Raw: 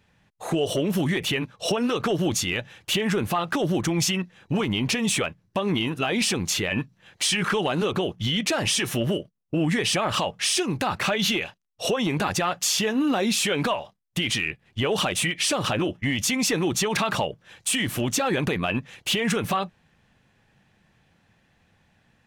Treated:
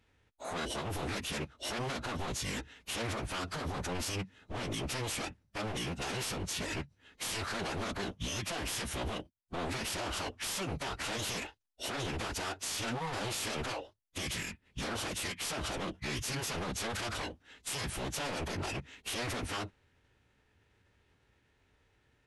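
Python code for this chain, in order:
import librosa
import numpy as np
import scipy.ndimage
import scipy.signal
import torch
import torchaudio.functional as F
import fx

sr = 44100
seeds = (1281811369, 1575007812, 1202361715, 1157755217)

y = 10.0 ** (-24.5 / 20.0) * (np.abs((x / 10.0 ** (-24.5 / 20.0) + 3.0) % 4.0 - 2.0) - 1.0)
y = fx.pitch_keep_formants(y, sr, semitones=-11.0)
y = F.gain(torch.from_numpy(y), -5.5).numpy()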